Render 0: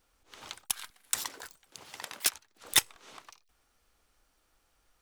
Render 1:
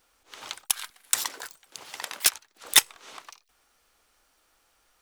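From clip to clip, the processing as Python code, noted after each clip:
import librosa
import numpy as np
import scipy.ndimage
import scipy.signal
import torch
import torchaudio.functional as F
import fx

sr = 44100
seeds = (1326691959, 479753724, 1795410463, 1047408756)

y = fx.low_shelf(x, sr, hz=250.0, db=-11.0)
y = F.gain(torch.from_numpy(y), 6.5).numpy()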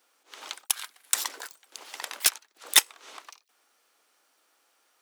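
y = scipy.signal.sosfilt(scipy.signal.butter(4, 260.0, 'highpass', fs=sr, output='sos'), x)
y = F.gain(torch.from_numpy(y), -1.0).numpy()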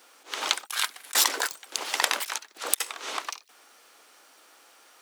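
y = fx.high_shelf(x, sr, hz=11000.0, db=-4.0)
y = fx.over_compress(y, sr, threshold_db=-32.0, ratio=-0.5)
y = F.gain(torch.from_numpy(y), 7.5).numpy()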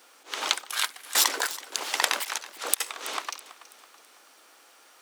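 y = fx.echo_feedback(x, sr, ms=328, feedback_pct=42, wet_db=-17.0)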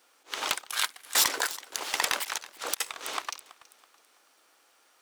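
y = fx.law_mismatch(x, sr, coded='A')
y = 10.0 ** (-13.0 / 20.0) * (np.abs((y / 10.0 ** (-13.0 / 20.0) + 3.0) % 4.0 - 2.0) - 1.0)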